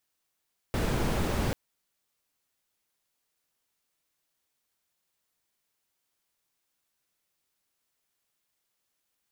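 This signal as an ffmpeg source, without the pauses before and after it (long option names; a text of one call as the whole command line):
ffmpeg -f lavfi -i "anoisesrc=color=brown:amplitude=0.197:duration=0.79:sample_rate=44100:seed=1" out.wav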